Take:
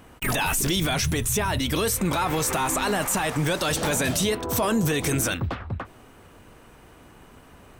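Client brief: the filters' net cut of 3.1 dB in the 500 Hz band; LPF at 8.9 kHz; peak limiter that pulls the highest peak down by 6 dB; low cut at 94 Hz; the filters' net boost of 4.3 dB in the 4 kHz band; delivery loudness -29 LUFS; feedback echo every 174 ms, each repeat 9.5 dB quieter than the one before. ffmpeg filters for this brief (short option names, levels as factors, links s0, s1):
-af "highpass=94,lowpass=8900,equalizer=f=500:t=o:g=-4,equalizer=f=4000:t=o:g=5.5,alimiter=limit=0.15:level=0:latency=1,aecho=1:1:174|348|522|696:0.335|0.111|0.0365|0.012,volume=0.631"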